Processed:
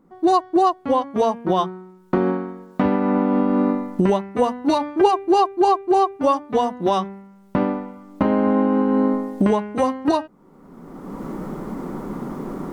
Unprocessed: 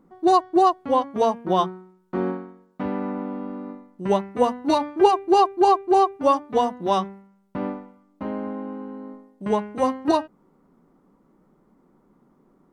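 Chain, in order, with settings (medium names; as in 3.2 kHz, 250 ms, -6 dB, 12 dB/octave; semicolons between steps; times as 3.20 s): recorder AGC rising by 28 dB/s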